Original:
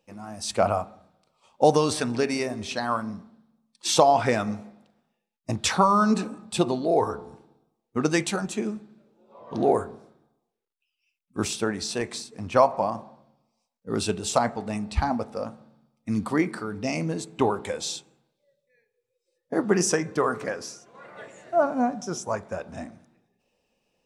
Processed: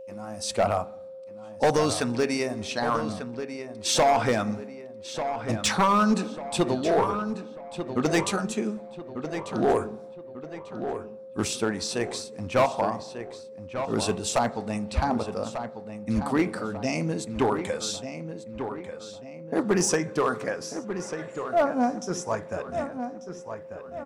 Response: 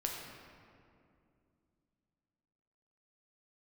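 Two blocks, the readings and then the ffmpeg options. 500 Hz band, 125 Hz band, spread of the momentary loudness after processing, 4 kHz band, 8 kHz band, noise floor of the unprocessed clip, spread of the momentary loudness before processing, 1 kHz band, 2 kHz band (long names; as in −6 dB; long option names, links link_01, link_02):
−0.5 dB, 0.0 dB, 15 LU, 0.0 dB, 0.0 dB, −81 dBFS, 17 LU, −1.0 dB, +0.5 dB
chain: -filter_complex "[0:a]volume=16dB,asoftclip=hard,volume=-16dB,aeval=exprs='val(0)+0.0112*sin(2*PI*530*n/s)':channel_layout=same,asplit=2[link_01][link_02];[link_02]adelay=1193,lowpass=frequency=3200:poles=1,volume=-9dB,asplit=2[link_03][link_04];[link_04]adelay=1193,lowpass=frequency=3200:poles=1,volume=0.43,asplit=2[link_05][link_06];[link_06]adelay=1193,lowpass=frequency=3200:poles=1,volume=0.43,asplit=2[link_07][link_08];[link_08]adelay=1193,lowpass=frequency=3200:poles=1,volume=0.43,asplit=2[link_09][link_10];[link_10]adelay=1193,lowpass=frequency=3200:poles=1,volume=0.43[link_11];[link_01][link_03][link_05][link_07][link_09][link_11]amix=inputs=6:normalize=0"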